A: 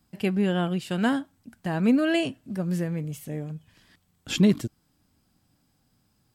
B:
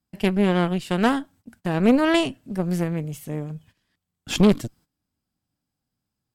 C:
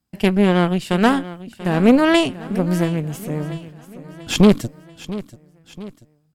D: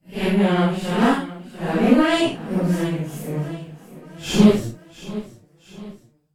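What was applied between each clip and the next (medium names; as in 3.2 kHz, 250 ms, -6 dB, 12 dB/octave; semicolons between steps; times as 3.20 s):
Chebyshev shaper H 4 -11 dB, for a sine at -9.5 dBFS; gate -52 dBFS, range -16 dB; trim +2 dB
feedback delay 687 ms, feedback 48%, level -16 dB; trim +4.5 dB
phase randomisation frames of 200 ms; trim -2 dB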